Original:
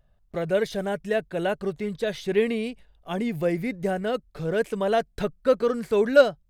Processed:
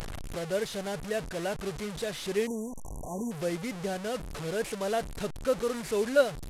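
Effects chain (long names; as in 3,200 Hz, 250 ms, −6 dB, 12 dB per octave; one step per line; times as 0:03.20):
linear delta modulator 64 kbit/s, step −26 dBFS
time-frequency box erased 0:02.47–0:03.32, 1,100–5,700 Hz
upward compression, threshold −29 dBFS
level −7 dB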